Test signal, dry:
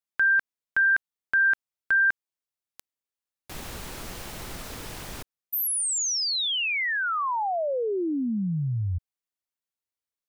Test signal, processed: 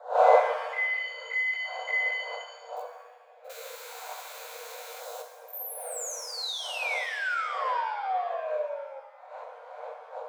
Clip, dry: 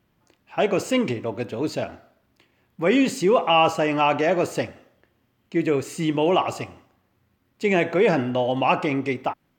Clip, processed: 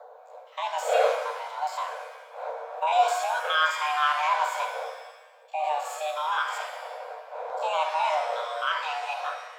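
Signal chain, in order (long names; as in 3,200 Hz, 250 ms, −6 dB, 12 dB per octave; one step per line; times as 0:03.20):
spectrum averaged block by block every 50 ms
wind on the microphone 330 Hz −30 dBFS
EQ curve with evenly spaced ripples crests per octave 1.1, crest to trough 7 dB
frequency shifter +450 Hz
auto-filter notch saw down 0.4 Hz 210–2,500 Hz
reverb with rising layers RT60 1.1 s, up +7 semitones, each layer −8 dB, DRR 5 dB
level −4.5 dB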